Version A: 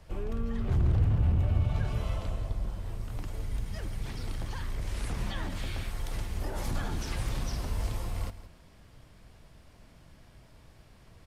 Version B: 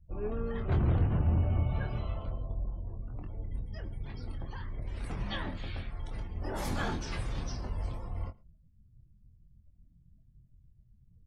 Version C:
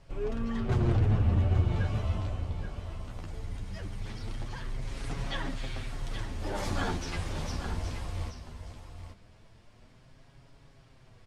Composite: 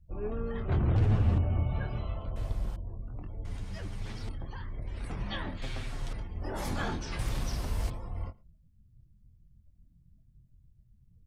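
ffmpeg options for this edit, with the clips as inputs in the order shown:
-filter_complex "[2:a]asplit=3[a][b][c];[0:a]asplit=2[d][e];[1:a]asplit=6[f][g][h][i][j][k];[f]atrim=end=0.962[l];[a]atrim=start=0.958:end=1.382[m];[g]atrim=start=1.378:end=2.362[n];[d]atrim=start=2.358:end=2.762[o];[h]atrim=start=2.758:end=3.452[p];[b]atrim=start=3.448:end=4.292[q];[i]atrim=start=4.288:end=5.622[r];[c]atrim=start=5.618:end=6.132[s];[j]atrim=start=6.128:end=7.192[t];[e]atrim=start=7.188:end=7.902[u];[k]atrim=start=7.898[v];[l][m]acrossfade=d=0.004:c1=hsin:c2=hsin[w];[w][n]acrossfade=d=0.004:c1=hsin:c2=hsin[x];[x][o]acrossfade=d=0.004:c1=hsin:c2=hsin[y];[y][p]acrossfade=d=0.004:c1=hsin:c2=hsin[z];[z][q]acrossfade=d=0.004:c1=hsin:c2=hsin[aa];[aa][r]acrossfade=d=0.004:c1=hsin:c2=hsin[ab];[ab][s]acrossfade=d=0.004:c1=hsin:c2=hsin[ac];[ac][t]acrossfade=d=0.004:c1=hsin:c2=hsin[ad];[ad][u]acrossfade=d=0.004:c1=hsin:c2=hsin[ae];[ae][v]acrossfade=d=0.004:c1=hsin:c2=hsin"

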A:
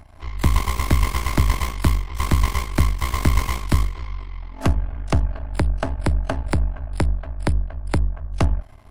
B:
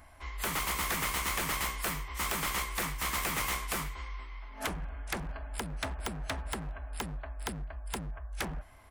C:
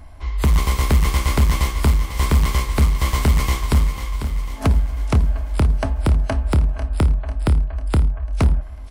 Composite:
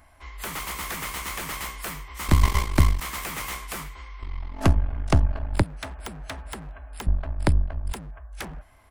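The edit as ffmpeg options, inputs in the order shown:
-filter_complex "[0:a]asplit=3[a][b][c];[1:a]asplit=4[d][e][f][g];[d]atrim=end=2.282[h];[a]atrim=start=2.278:end=3.012[i];[e]atrim=start=3.008:end=4.222[j];[b]atrim=start=4.218:end=5.632[k];[f]atrim=start=5.628:end=7.072[l];[c]atrim=start=7.068:end=7.932[m];[g]atrim=start=7.928[n];[h][i]acrossfade=d=0.004:c1=hsin:c2=hsin[o];[o][j]acrossfade=d=0.004:c1=hsin:c2=hsin[p];[p][k]acrossfade=d=0.004:c1=hsin:c2=hsin[q];[q][l]acrossfade=d=0.004:c1=hsin:c2=hsin[r];[r][m]acrossfade=d=0.004:c1=hsin:c2=hsin[s];[s][n]acrossfade=d=0.004:c1=hsin:c2=hsin"

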